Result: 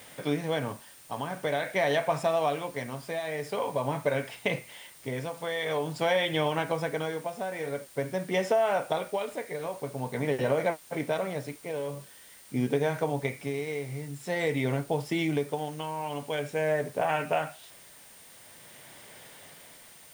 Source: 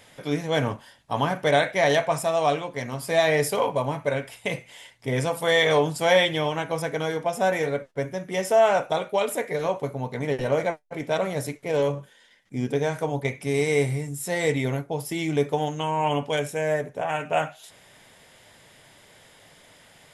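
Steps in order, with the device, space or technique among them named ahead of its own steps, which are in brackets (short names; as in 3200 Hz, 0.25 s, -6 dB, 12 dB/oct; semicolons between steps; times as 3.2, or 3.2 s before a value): medium wave at night (BPF 110–4400 Hz; compressor, threshold -24 dBFS, peak gain reduction 10 dB; tremolo 0.47 Hz, depth 62%; whine 9000 Hz -58 dBFS; white noise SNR 23 dB); gain +2 dB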